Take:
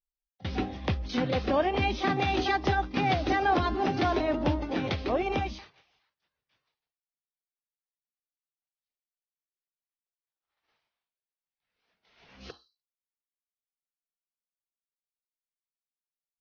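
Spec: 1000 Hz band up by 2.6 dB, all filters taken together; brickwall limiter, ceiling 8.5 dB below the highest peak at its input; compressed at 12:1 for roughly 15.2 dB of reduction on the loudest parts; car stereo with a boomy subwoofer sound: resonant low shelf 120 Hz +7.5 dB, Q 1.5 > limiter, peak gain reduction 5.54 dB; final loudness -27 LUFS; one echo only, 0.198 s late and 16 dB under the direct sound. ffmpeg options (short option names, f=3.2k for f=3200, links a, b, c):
-af "equalizer=f=1k:t=o:g=4,acompressor=threshold=-35dB:ratio=12,alimiter=level_in=6.5dB:limit=-24dB:level=0:latency=1,volume=-6.5dB,lowshelf=f=120:t=q:w=1.5:g=7.5,aecho=1:1:198:0.158,volume=13.5dB,alimiter=limit=-17dB:level=0:latency=1"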